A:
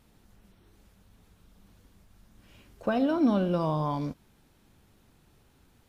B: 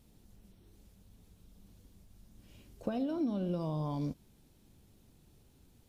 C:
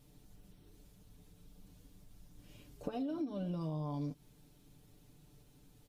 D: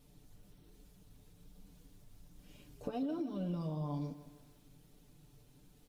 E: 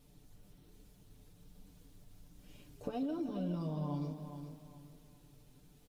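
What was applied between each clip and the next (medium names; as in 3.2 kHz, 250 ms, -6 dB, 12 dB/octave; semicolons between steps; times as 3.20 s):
compression 12:1, threshold -28 dBFS, peak gain reduction 10.5 dB; peaking EQ 1.4 kHz -10.5 dB 2.1 oct
comb 6.8 ms, depth 78%; compression 6:1, threshold -34 dBFS, peak gain reduction 9 dB; trim -1 dB
flange 1.2 Hz, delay 3.9 ms, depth 5.1 ms, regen -42%; bit-crushed delay 155 ms, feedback 55%, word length 11-bit, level -14 dB; trim +3.5 dB
feedback delay 416 ms, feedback 32%, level -9 dB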